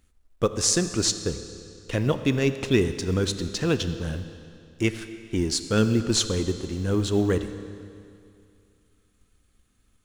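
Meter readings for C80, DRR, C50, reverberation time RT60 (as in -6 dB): 11.0 dB, 10.0 dB, 10.5 dB, 2.4 s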